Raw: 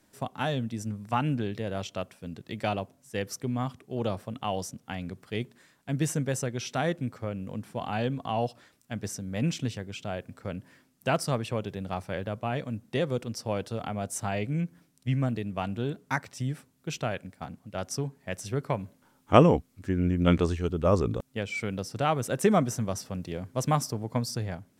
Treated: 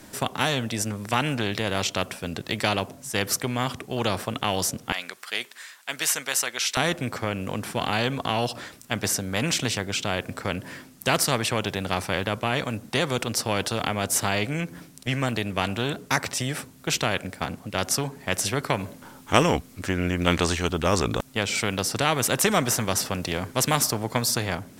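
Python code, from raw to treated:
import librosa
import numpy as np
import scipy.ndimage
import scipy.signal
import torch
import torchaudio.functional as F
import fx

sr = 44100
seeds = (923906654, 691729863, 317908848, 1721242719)

y = fx.highpass(x, sr, hz=1300.0, slope=12, at=(4.92, 6.77))
y = fx.spectral_comp(y, sr, ratio=2.0)
y = F.gain(torch.from_numpy(y), 2.5).numpy()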